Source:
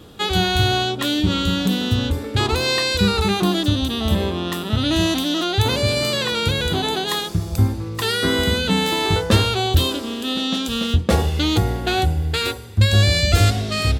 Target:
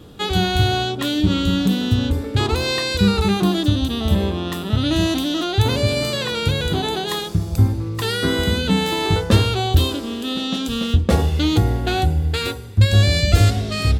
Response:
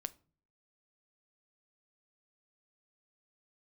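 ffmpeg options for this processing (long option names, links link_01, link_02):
-filter_complex "[0:a]asplit=2[link_01][link_02];[1:a]atrim=start_sample=2205,lowshelf=frequency=460:gain=6.5[link_03];[link_02][link_03]afir=irnorm=-1:irlink=0,volume=10dB[link_04];[link_01][link_04]amix=inputs=2:normalize=0,volume=-13dB"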